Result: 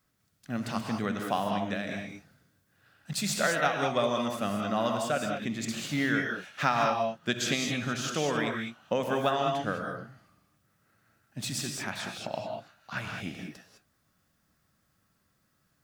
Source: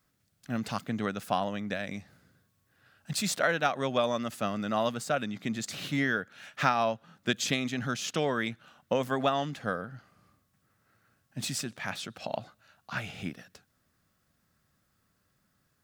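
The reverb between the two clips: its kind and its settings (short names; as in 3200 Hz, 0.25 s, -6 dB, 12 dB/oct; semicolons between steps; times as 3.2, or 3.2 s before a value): non-linear reverb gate 0.23 s rising, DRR 2 dB; gain -1 dB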